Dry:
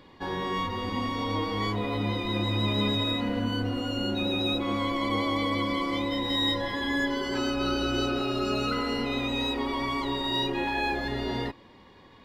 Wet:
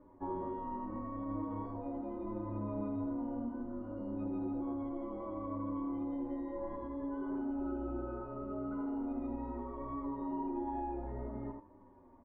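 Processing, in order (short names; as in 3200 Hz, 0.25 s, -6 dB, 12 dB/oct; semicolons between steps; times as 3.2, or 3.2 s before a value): LPF 1100 Hz 24 dB/oct; comb 3.3 ms, depth 66%; echo 80 ms -9 dB; compressor, threshold -28 dBFS, peak gain reduction 7 dB; resonator 450 Hz, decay 0.72 s, mix 70%; endless flanger 7.7 ms -0.68 Hz; gain +5.5 dB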